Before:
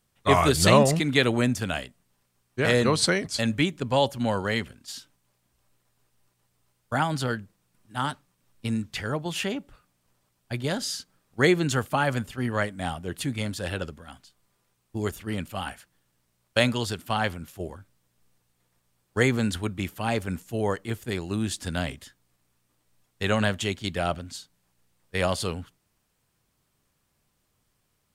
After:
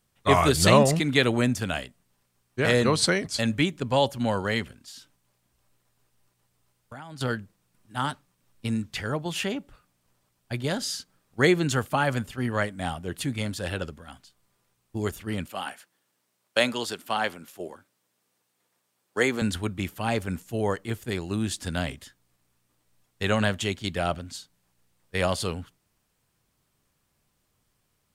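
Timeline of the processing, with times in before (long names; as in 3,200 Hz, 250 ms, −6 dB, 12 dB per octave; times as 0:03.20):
0:04.75–0:07.21: downward compressor 4 to 1, threshold −41 dBFS
0:15.47–0:19.42: high-pass filter 270 Hz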